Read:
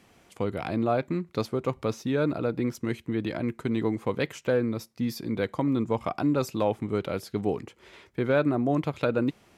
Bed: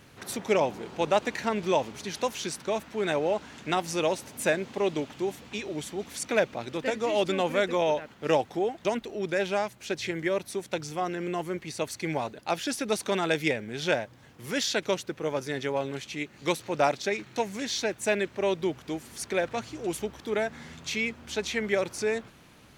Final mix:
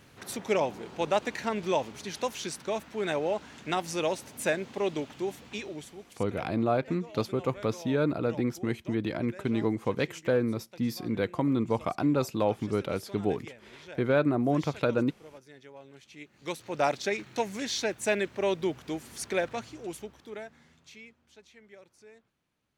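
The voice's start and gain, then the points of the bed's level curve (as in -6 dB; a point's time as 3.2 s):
5.80 s, -1.0 dB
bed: 5.63 s -2.5 dB
6.25 s -20 dB
15.77 s -20 dB
16.93 s -1 dB
19.38 s -1 dB
21.5 s -26 dB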